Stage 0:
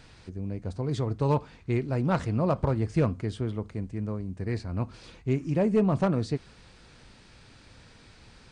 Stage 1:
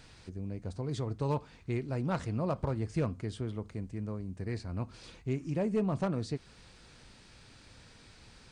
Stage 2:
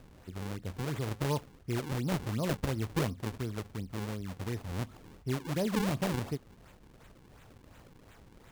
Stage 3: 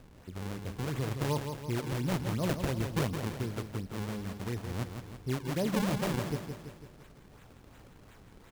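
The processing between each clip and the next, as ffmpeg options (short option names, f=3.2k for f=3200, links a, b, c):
-filter_complex "[0:a]highshelf=f=4.8k:g=5.5,asplit=2[a][b];[b]acompressor=threshold=-34dB:ratio=6,volume=-2dB[c];[a][c]amix=inputs=2:normalize=0,volume=-8.5dB"
-af "acrusher=samples=40:mix=1:aa=0.000001:lfo=1:lforange=64:lforate=2.8"
-af "aecho=1:1:166|332|498|664|830|996:0.447|0.232|0.121|0.0628|0.0327|0.017"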